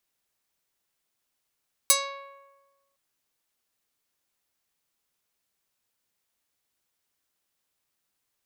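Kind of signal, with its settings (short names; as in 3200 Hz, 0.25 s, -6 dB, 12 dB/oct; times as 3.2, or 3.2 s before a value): plucked string C#5, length 1.06 s, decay 1.28 s, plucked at 0.31, medium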